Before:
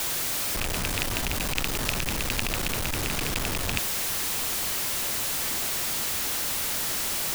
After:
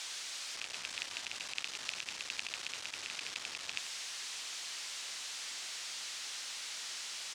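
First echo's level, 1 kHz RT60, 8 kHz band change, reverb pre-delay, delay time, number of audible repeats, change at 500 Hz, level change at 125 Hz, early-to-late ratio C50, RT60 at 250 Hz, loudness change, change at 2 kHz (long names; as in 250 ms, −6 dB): −14.0 dB, no reverb audible, −13.0 dB, no reverb audible, 92 ms, 1, −22.5 dB, −35.5 dB, no reverb audible, no reverb audible, −13.5 dB, −11.0 dB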